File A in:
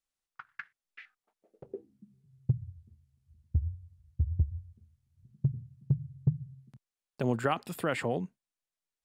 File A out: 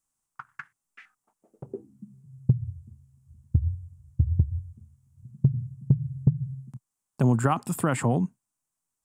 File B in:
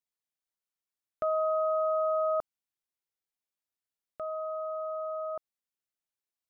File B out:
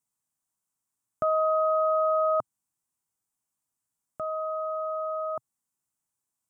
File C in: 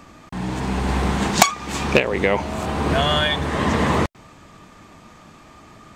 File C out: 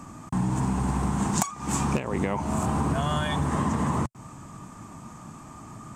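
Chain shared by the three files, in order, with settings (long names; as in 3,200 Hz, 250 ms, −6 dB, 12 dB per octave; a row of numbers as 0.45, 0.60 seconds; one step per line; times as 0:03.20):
octave-band graphic EQ 125/250/500/1,000/2,000/4,000/8,000 Hz +9/+5/−5/+7/−5/−9/+11 dB
downward compressor 12 to 1, threshold −20 dBFS
loudness normalisation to −27 LKFS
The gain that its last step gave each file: +4.5, +4.0, −1.5 decibels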